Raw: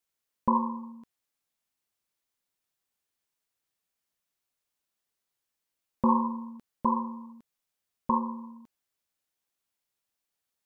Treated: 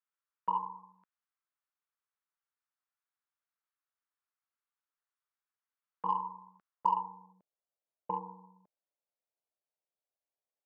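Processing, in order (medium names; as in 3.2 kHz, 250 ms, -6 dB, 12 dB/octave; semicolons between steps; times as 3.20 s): frequency shift -44 Hz; band-pass sweep 1.3 kHz -> 600 Hz, 6.63–7.38 s; Chebyshev shaper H 7 -37 dB, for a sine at -15 dBFS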